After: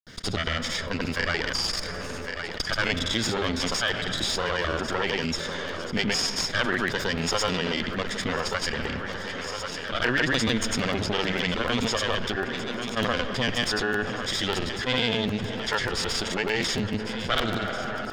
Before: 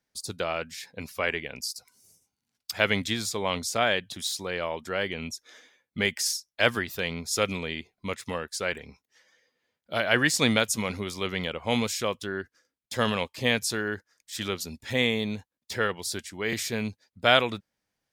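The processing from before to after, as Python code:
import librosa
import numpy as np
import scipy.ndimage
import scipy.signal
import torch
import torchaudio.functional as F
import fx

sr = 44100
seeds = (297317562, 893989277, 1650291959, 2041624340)

y = fx.lower_of_two(x, sr, delay_ms=0.58)
y = fx.air_absorb(y, sr, metres=160.0)
y = fx.rev_freeverb(y, sr, rt60_s=3.9, hf_ratio=0.3, predelay_ms=30, drr_db=18.5)
y = fx.granulator(y, sr, seeds[0], grain_ms=100.0, per_s=20.0, spray_ms=100.0, spread_st=0)
y = fx.high_shelf(y, sr, hz=4600.0, db=11.0)
y = fx.echo_thinned(y, sr, ms=1098, feedback_pct=59, hz=200.0, wet_db=-22.5)
y = fx.buffer_crackle(y, sr, first_s=0.72, period_s=0.15, block=512, kind='repeat')
y = fx.env_flatten(y, sr, amount_pct=70)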